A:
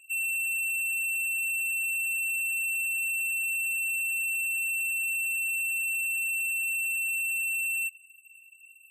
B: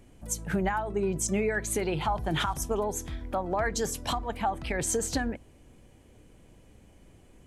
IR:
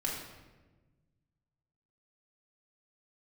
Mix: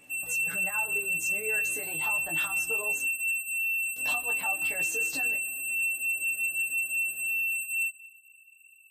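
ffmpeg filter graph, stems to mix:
-filter_complex "[0:a]volume=-1.5dB,asplit=2[link_01][link_02];[link_02]volume=-6dB[link_03];[1:a]acompressor=threshold=-36dB:ratio=6,highpass=frequency=580:poles=1,aecho=1:1:6.7:0.68,volume=3dB,asplit=3[link_04][link_05][link_06];[link_04]atrim=end=3.06,asetpts=PTS-STARTPTS,afade=type=out:start_time=3.056:duration=0.004:curve=hsin[link_07];[link_05]atrim=start=3.06:end=3.96,asetpts=PTS-STARTPTS,volume=0[link_08];[link_06]atrim=start=3.96,asetpts=PTS-STARTPTS,afade=type=in:duration=0.004:curve=hsin[link_09];[link_07][link_08][link_09]concat=n=3:v=0:a=1,asplit=2[link_10][link_11];[link_11]volume=-18dB[link_12];[2:a]atrim=start_sample=2205[link_13];[link_03][link_12]amix=inputs=2:normalize=0[link_14];[link_14][link_13]afir=irnorm=-1:irlink=0[link_15];[link_01][link_10][link_15]amix=inputs=3:normalize=0,flanger=delay=16:depth=2.7:speed=0.27"

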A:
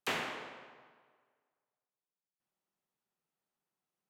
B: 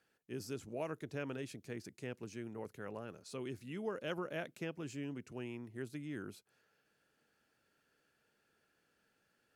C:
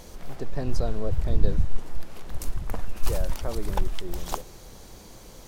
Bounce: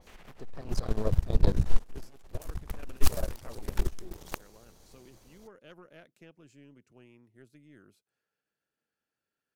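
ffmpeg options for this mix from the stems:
ffmpeg -i stem1.wav -i stem2.wav -i stem3.wav -filter_complex "[0:a]alimiter=level_in=4dB:limit=-24dB:level=0:latency=1,volume=-4dB,volume=-8.5dB[link_01];[1:a]adelay=1600,volume=-2dB[link_02];[2:a]volume=-2.5dB[link_03];[link_01][link_02][link_03]amix=inputs=3:normalize=0,aeval=exprs='0.447*(cos(1*acos(clip(val(0)/0.447,-1,1)))-cos(1*PI/2))+0.00891*(cos(3*acos(clip(val(0)/0.447,-1,1)))-cos(3*PI/2))+0.0316*(cos(4*acos(clip(val(0)/0.447,-1,1)))-cos(4*PI/2))+0.0794*(cos(7*acos(clip(val(0)/0.447,-1,1)))-cos(7*PI/2))+0.02*(cos(8*acos(clip(val(0)/0.447,-1,1)))-cos(8*PI/2))':channel_layout=same,adynamicequalizer=threshold=0.002:dfrequency=3900:dqfactor=0.7:tfrequency=3900:tqfactor=0.7:attack=5:release=100:ratio=0.375:range=1.5:mode=boostabove:tftype=highshelf" out.wav

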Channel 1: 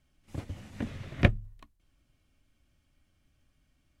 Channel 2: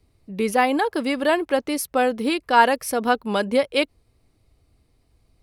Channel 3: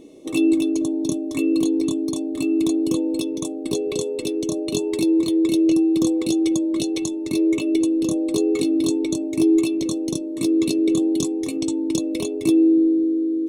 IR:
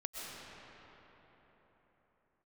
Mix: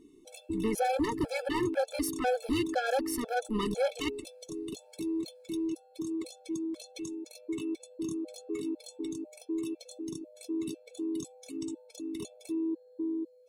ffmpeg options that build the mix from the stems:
-filter_complex "[0:a]firequalizer=gain_entry='entry(180,0);entry(270,7);entry(470,-5);entry(760,-22);entry(5300,-22);entry(8200,-3)':delay=0.05:min_phase=1,volume=-7dB[link_01];[1:a]alimiter=limit=-11dB:level=0:latency=1:release=36,tremolo=f=230:d=0.75,adelay=250,volume=1dB[link_02];[2:a]bass=frequency=250:gain=1,treble=frequency=4000:gain=3,alimiter=limit=-14.5dB:level=0:latency=1:release=75,volume=-12dB[link_03];[link_01][link_02][link_03]amix=inputs=3:normalize=0,asoftclip=type=tanh:threshold=-21dB,afftfilt=real='re*gt(sin(2*PI*2*pts/sr)*(1-2*mod(floor(b*sr/1024/440),2)),0)':imag='im*gt(sin(2*PI*2*pts/sr)*(1-2*mod(floor(b*sr/1024/440),2)),0)':win_size=1024:overlap=0.75"

